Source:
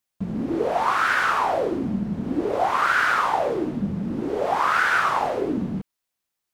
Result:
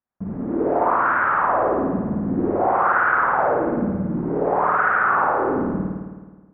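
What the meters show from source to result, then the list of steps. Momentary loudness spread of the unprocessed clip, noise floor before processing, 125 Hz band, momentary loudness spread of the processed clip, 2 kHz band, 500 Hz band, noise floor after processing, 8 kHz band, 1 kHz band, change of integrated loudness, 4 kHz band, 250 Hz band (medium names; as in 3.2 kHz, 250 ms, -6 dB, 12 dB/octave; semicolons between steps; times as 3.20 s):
8 LU, -83 dBFS, +3.0 dB, 9 LU, +1.0 dB, +4.0 dB, -49 dBFS, under -40 dB, +3.5 dB, +2.5 dB, under -20 dB, +3.0 dB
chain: low-pass 1.6 kHz 24 dB/octave; spring tank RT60 1.4 s, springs 53 ms, chirp 80 ms, DRR -4 dB; trim -2 dB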